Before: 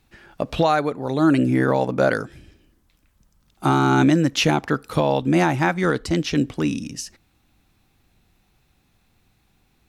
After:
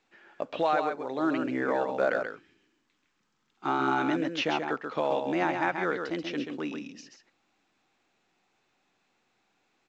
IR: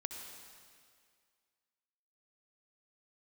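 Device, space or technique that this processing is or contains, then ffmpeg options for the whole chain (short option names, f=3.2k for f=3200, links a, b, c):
telephone: -filter_complex "[0:a]asettb=1/sr,asplit=3[a][b][c];[a]atrim=end=2.224[d];[b]atrim=start=2.22:end=3.68,asetpts=PTS-STARTPTS,afade=t=in:d=0.004:c=qsin,afade=t=out:st=1.456:d=0.004:c=qsin,equalizer=f=620:t=o:w=0.56:g=-14[e];[c]atrim=start=3.676[f];[d][e]acrossfade=d=0.004:c1=hsin:c2=qsin[g];[g][f]acrossfade=d=0.004:c1=qsin:c2=hsin,highpass=360,lowpass=3.1k,aecho=1:1:134:0.501,volume=-7dB" -ar 16000 -c:a pcm_mulaw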